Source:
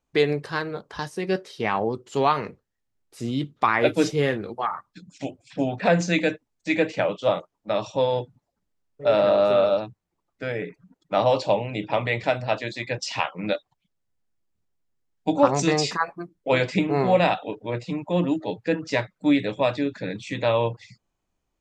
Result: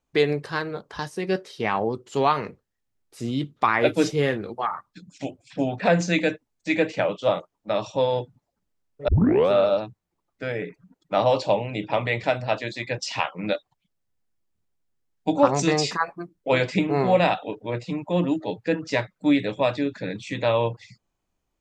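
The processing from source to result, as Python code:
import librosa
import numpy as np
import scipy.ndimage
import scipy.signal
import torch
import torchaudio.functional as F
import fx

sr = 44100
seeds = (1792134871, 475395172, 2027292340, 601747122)

y = fx.edit(x, sr, fx.tape_start(start_s=9.08, length_s=0.43), tone=tone)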